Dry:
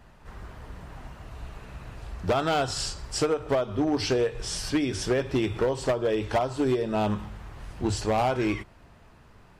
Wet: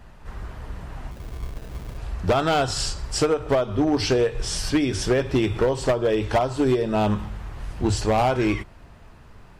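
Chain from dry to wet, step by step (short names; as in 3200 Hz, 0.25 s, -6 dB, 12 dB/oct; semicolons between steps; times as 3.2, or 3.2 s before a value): low shelf 67 Hz +6.5 dB; 1.11–1.98 sample-rate reducer 1100 Hz, jitter 0%; gain +4 dB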